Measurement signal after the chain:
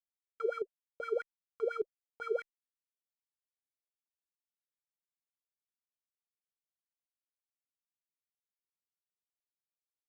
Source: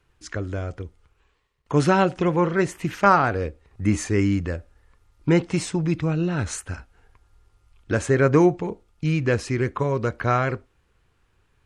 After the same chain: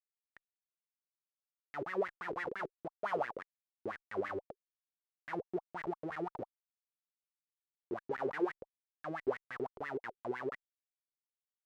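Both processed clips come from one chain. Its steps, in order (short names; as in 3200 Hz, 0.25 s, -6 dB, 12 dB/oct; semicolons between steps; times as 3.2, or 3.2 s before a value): tape spacing loss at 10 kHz 44 dB; Schmitt trigger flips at -22 dBFS; wah 5.9 Hz 370–2000 Hz, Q 9.6; gain +5 dB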